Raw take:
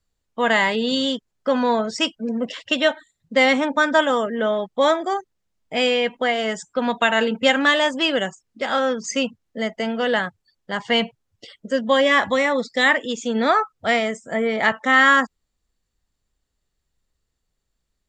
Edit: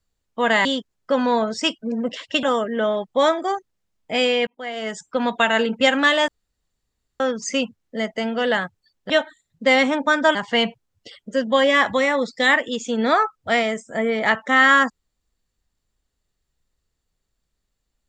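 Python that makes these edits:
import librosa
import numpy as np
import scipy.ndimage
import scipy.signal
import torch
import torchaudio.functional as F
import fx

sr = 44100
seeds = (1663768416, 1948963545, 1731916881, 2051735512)

y = fx.edit(x, sr, fx.cut(start_s=0.65, length_s=0.37),
    fx.move(start_s=2.8, length_s=1.25, to_s=10.72),
    fx.fade_in_span(start_s=6.09, length_s=0.61),
    fx.room_tone_fill(start_s=7.9, length_s=0.92), tone=tone)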